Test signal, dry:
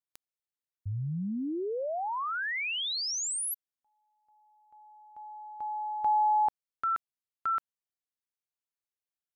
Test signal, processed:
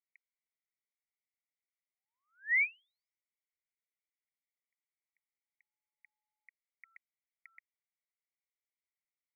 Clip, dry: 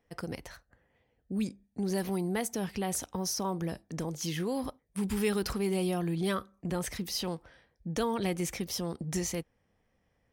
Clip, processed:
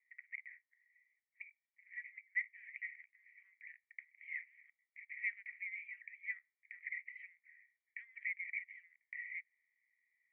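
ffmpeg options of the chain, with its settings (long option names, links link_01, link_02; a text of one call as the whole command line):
ffmpeg -i in.wav -af "asuperpass=centerf=2100:order=8:qfactor=4.6,volume=6dB" out.wav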